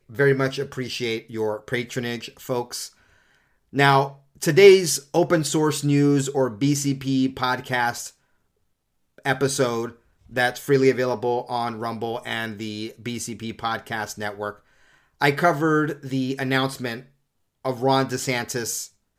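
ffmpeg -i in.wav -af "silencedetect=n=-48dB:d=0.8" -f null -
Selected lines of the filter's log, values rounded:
silence_start: 8.12
silence_end: 9.18 | silence_duration: 1.06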